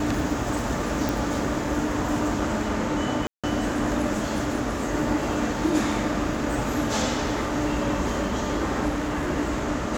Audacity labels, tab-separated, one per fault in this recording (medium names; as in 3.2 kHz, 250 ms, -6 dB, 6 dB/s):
1.090000	1.090000	pop
3.270000	3.440000	dropout 166 ms
8.880000	9.300000	clipped -22.5 dBFS